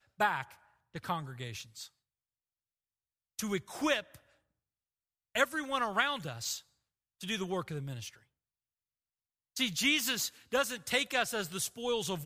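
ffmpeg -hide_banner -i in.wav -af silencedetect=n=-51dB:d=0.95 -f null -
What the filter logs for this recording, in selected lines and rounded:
silence_start: 1.88
silence_end: 3.39 | silence_duration: 1.51
silence_start: 4.18
silence_end: 5.35 | silence_duration: 1.17
silence_start: 8.17
silence_end: 9.56 | silence_duration: 1.40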